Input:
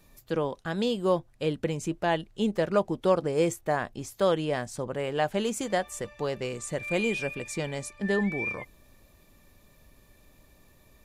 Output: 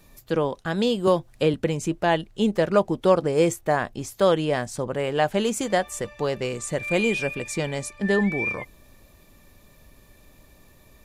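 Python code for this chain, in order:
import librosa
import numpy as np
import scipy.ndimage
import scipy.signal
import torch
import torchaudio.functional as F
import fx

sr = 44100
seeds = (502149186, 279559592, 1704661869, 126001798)

y = fx.band_squash(x, sr, depth_pct=70, at=(1.07, 1.54))
y = y * 10.0 ** (5.0 / 20.0)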